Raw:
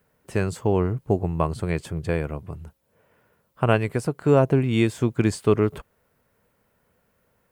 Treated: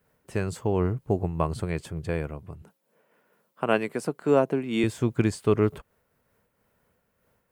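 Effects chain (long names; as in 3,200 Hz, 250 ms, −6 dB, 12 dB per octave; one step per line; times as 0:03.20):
0:02.62–0:04.84: high-pass filter 180 Hz 24 dB per octave
amplitude modulation by smooth noise, depth 55%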